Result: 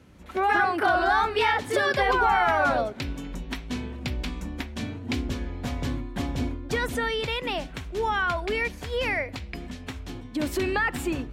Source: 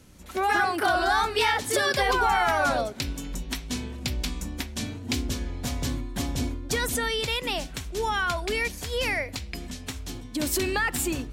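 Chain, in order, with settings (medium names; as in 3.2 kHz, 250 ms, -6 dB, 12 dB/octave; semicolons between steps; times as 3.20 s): high-pass 43 Hz; tone controls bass -1 dB, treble -14 dB; trim +1.5 dB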